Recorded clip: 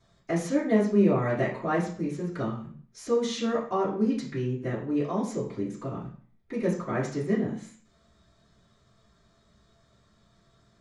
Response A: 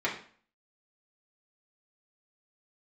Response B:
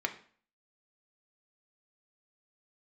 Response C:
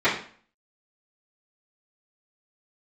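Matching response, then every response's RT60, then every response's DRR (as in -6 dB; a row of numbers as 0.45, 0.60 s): C; 0.45, 0.45, 0.45 s; -5.5, 4.5, -14.5 dB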